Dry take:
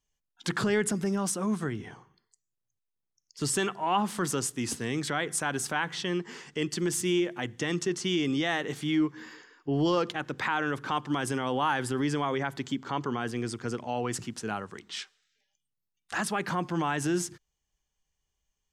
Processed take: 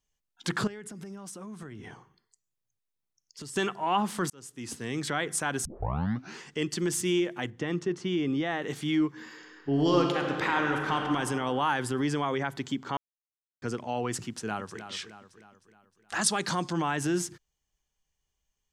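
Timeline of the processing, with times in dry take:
0:00.67–0:03.56: downward compressor 12 to 1, threshold −38 dBFS
0:04.30–0:05.09: fade in linear
0:05.65: tape start 0.75 s
0:07.50–0:08.62: low-pass filter 1,500 Hz 6 dB per octave
0:09.29–0:10.99: thrown reverb, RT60 2.3 s, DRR 1 dB
0:12.97–0:13.62: silence
0:14.28–0:14.80: delay throw 310 ms, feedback 50%, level −10.5 dB
0:16.21–0:16.73: flat-topped bell 5,800 Hz +11.5 dB

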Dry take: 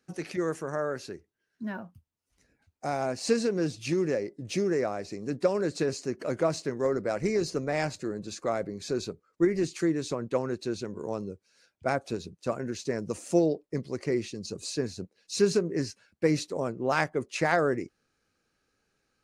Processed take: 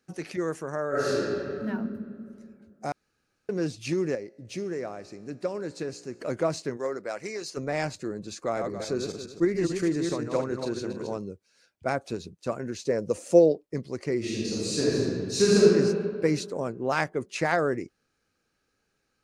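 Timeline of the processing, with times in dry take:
0:00.89–0:01.65: thrown reverb, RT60 2.4 s, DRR −11.5 dB
0:02.92–0:03.49: fill with room tone
0:04.15–0:06.21: tuned comb filter 59 Hz, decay 1.9 s, mix 50%
0:06.76–0:07.56: high-pass filter 470 Hz → 1,300 Hz 6 dB per octave
0:08.43–0:11.17: feedback delay that plays each chunk backwards 139 ms, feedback 44%, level −4 dB
0:12.84–0:13.52: parametric band 520 Hz +10.5 dB 0.47 octaves
0:14.18–0:15.66: thrown reverb, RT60 2 s, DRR −7.5 dB
0:16.37–0:17.27: floating-point word with a short mantissa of 8 bits

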